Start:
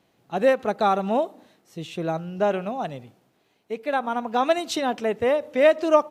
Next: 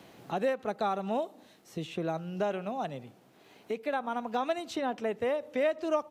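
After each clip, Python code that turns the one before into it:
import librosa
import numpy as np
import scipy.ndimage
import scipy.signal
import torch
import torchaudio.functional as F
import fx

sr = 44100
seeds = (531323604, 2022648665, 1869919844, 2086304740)

y = fx.band_squash(x, sr, depth_pct=70)
y = F.gain(torch.from_numpy(y), -9.0).numpy()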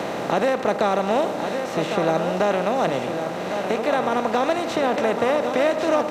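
y = fx.bin_compress(x, sr, power=0.4)
y = y + 10.0 ** (-7.5 / 20.0) * np.pad(y, (int(1104 * sr / 1000.0), 0))[:len(y)]
y = F.gain(torch.from_numpy(y), 5.0).numpy()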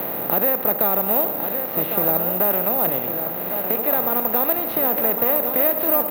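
y = fx.air_absorb(x, sr, metres=200.0)
y = (np.kron(scipy.signal.resample_poly(y, 1, 3), np.eye(3)[0]) * 3)[:len(y)]
y = F.gain(torch.from_numpy(y), -3.0).numpy()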